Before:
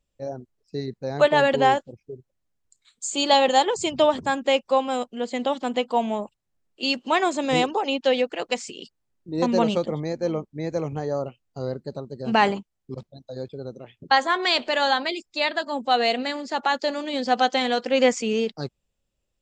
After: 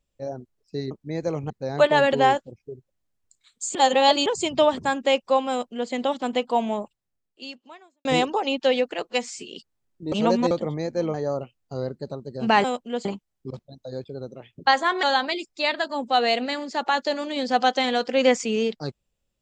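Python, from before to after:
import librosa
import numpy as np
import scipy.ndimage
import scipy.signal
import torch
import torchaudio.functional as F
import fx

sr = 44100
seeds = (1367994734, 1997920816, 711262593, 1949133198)

y = fx.edit(x, sr, fx.reverse_span(start_s=3.16, length_s=0.51),
    fx.duplicate(start_s=4.91, length_s=0.41, to_s=12.49),
    fx.fade_out_span(start_s=6.2, length_s=1.26, curve='qua'),
    fx.stretch_span(start_s=8.44, length_s=0.3, factor=1.5),
    fx.reverse_span(start_s=9.38, length_s=0.39),
    fx.move(start_s=10.4, length_s=0.59, to_s=0.91),
    fx.cut(start_s=14.47, length_s=0.33), tone=tone)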